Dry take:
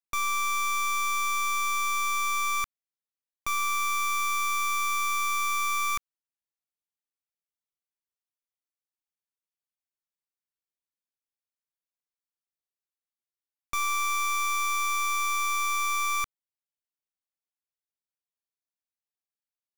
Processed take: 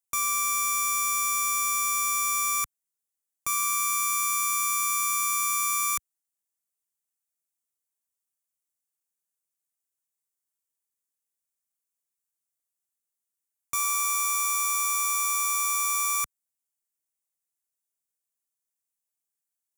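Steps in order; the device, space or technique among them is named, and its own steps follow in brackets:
budget condenser microphone (high-pass filter 70 Hz; high shelf with overshoot 5,700 Hz +10.5 dB, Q 1.5)
level −1.5 dB

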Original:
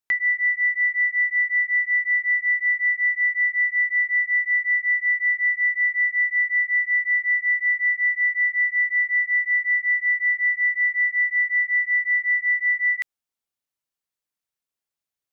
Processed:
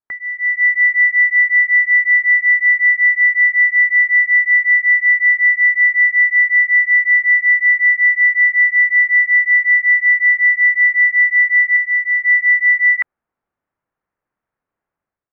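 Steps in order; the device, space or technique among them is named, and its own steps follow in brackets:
0:11.76–0:12.25: dynamic equaliser 2,000 Hz, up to −4 dB, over −29 dBFS
action camera in a waterproof case (low-pass filter 1,700 Hz 24 dB per octave; automatic gain control gain up to 15.5 dB; AAC 64 kbit/s 48,000 Hz)

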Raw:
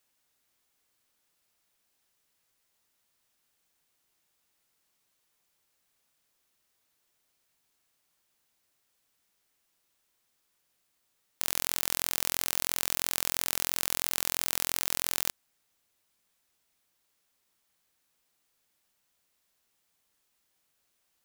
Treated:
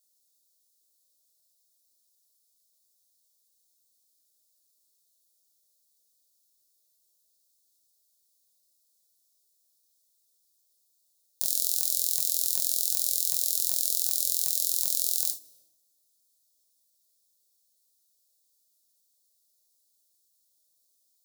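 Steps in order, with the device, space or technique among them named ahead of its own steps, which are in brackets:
compressed reverb return (on a send at −11 dB: convolution reverb RT60 0.85 s, pre-delay 40 ms + downward compressor 6 to 1, threshold −40 dBFS, peak gain reduction 10 dB)
on the sum: elliptic band-stop filter 630–3,900 Hz, stop band 60 dB
bass and treble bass −11 dB, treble +9 dB
reverb whose tail is shaped and stops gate 100 ms falling, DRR 3.5 dB
level −5 dB

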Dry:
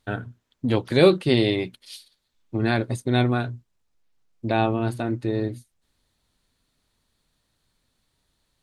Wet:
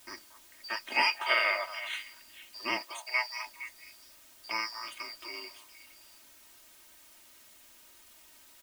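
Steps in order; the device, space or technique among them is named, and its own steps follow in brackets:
first-order pre-emphasis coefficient 0.97
split-band scrambled radio (band-splitting scrambler in four parts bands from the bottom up 2341; band-pass filter 370–3,400 Hz; white noise bed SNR 20 dB)
0:02.81–0:03.45: high-pass filter 280 Hz → 1,100 Hz 24 dB per octave
comb filter 3.2 ms, depth 75%
echo through a band-pass that steps 232 ms, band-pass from 930 Hz, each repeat 1.4 octaves, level −9 dB
level +8.5 dB

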